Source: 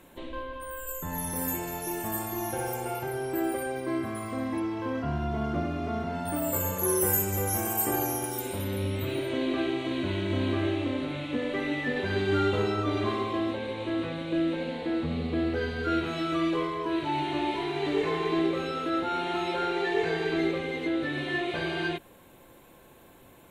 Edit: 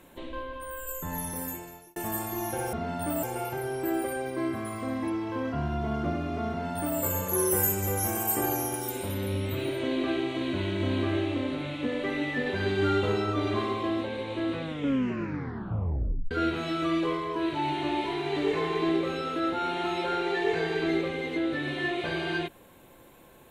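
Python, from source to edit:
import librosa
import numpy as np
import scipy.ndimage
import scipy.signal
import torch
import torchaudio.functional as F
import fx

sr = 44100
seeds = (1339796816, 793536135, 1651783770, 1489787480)

y = fx.edit(x, sr, fx.fade_out_span(start_s=1.13, length_s=0.83),
    fx.duplicate(start_s=5.99, length_s=0.5, to_s=2.73),
    fx.tape_stop(start_s=14.12, length_s=1.69), tone=tone)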